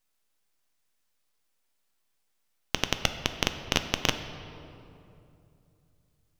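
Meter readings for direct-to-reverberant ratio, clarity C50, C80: 8.0 dB, 9.5 dB, 10.5 dB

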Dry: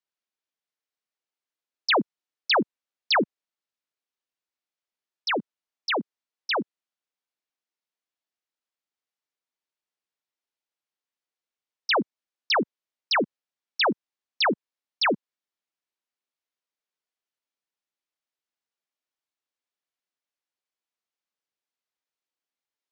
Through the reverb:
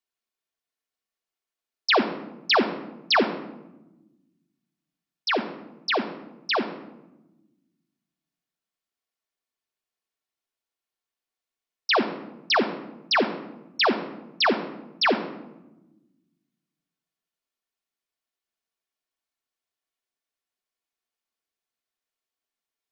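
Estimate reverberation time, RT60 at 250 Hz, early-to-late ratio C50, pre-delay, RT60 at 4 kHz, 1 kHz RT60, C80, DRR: 1.0 s, 1.8 s, 10.5 dB, 3 ms, 0.60 s, 0.90 s, 12.5 dB, 3.0 dB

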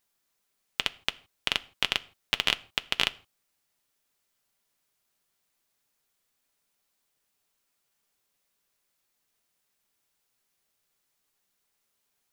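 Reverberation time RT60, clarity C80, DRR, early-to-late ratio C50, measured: non-exponential decay, 25.0 dB, 10.5 dB, 22.0 dB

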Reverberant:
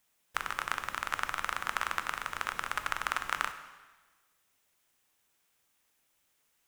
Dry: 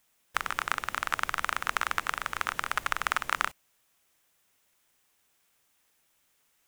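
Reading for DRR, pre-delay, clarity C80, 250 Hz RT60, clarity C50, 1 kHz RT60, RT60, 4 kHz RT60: 8.5 dB, 6 ms, 12.5 dB, 1.3 s, 10.5 dB, 1.3 s, 1.3 s, 1.2 s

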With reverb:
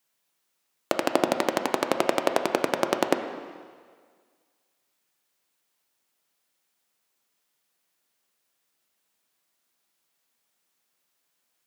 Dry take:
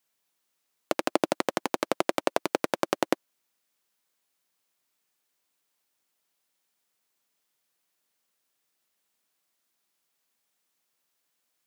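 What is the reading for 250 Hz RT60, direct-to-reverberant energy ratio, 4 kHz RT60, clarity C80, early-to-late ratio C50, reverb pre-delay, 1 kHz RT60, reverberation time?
1.7 s, 6.0 dB, 1.6 s, 9.0 dB, 8.0 dB, 5 ms, 1.8 s, 1.8 s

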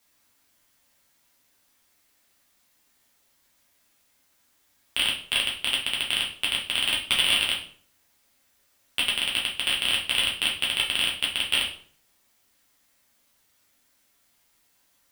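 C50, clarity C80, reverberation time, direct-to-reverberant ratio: 7.5 dB, 12.5 dB, 0.50 s, −4.0 dB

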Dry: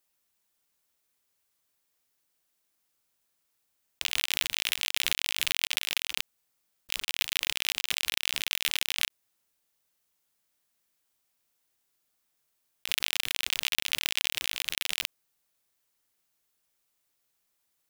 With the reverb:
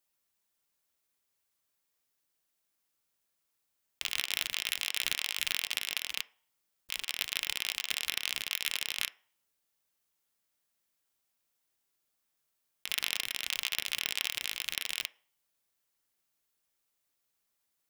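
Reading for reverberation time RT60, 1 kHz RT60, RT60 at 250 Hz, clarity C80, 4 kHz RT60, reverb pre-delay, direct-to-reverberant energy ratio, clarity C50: 0.50 s, 0.50 s, 0.40 s, 25.0 dB, 0.45 s, 3 ms, 11.0 dB, 20.5 dB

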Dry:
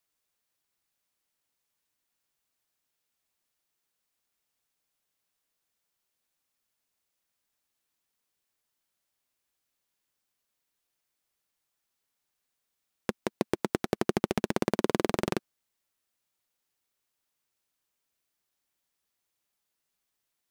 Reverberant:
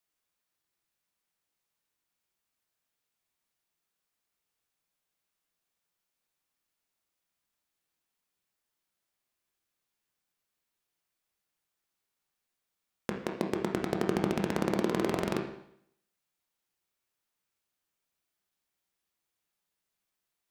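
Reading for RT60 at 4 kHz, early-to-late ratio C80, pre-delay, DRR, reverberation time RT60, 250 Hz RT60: 0.70 s, 9.5 dB, 15 ms, 1.5 dB, 0.70 s, 0.70 s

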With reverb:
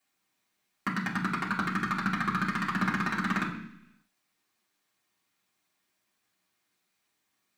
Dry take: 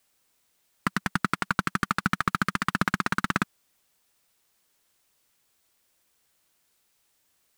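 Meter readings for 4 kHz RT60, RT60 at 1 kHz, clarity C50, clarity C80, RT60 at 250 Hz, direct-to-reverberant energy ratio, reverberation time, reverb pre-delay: 0.90 s, 0.70 s, 7.5 dB, 10.0 dB, 0.90 s, −5.5 dB, 0.70 s, 3 ms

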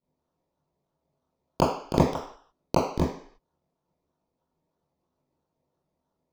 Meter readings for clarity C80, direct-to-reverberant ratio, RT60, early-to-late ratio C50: 7.0 dB, −11.0 dB, 0.55 s, 3.5 dB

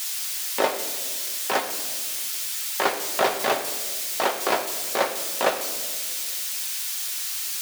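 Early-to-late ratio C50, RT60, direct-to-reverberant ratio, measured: 9.5 dB, 1.6 s, 3.0 dB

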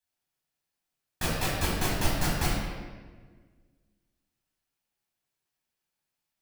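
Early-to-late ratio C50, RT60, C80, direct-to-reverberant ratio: −0.5 dB, 1.5 s, 2.0 dB, −6.5 dB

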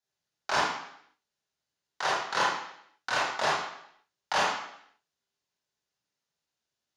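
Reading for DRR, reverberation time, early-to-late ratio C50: −6.5 dB, 0.70 s, 0.0 dB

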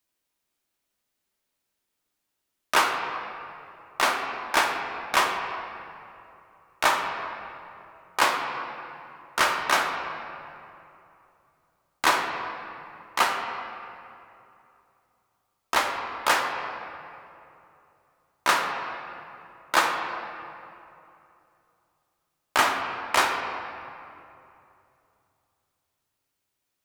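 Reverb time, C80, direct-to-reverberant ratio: 2.8 s, 5.5 dB, 1.5 dB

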